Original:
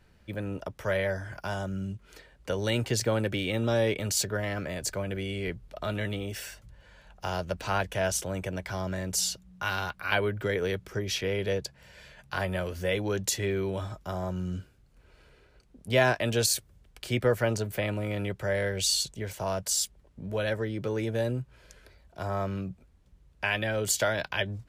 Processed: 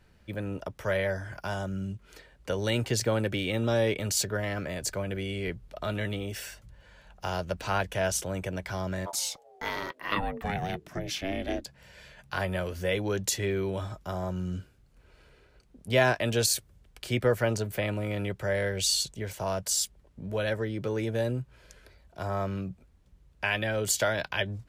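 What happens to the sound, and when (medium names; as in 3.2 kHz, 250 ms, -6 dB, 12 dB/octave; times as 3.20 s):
9.05–11.65 s: ring modulator 810 Hz -> 150 Hz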